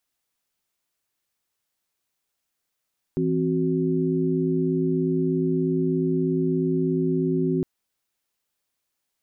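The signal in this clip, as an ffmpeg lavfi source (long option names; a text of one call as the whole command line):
ffmpeg -f lavfi -i "aevalsrc='0.0596*(sin(2*PI*164.81*t)+sin(2*PI*261.63*t)+sin(2*PI*369.99*t))':duration=4.46:sample_rate=44100" out.wav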